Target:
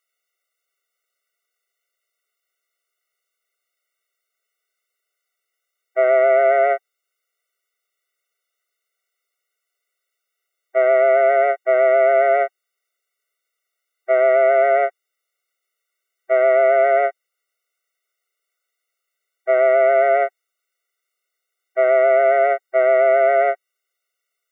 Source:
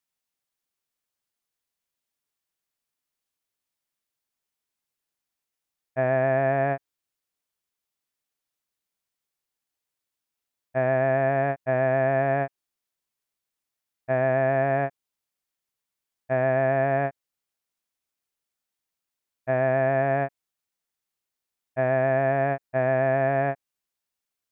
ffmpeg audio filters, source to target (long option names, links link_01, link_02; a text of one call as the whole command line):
ffmpeg -i in.wav -af "equalizer=frequency=1800:width_type=o:width=0.71:gain=12,afftfilt=real='re*eq(mod(floor(b*sr/1024/380),2),1)':imag='im*eq(mod(floor(b*sr/1024/380),2),1)':win_size=1024:overlap=0.75,volume=8.5dB" out.wav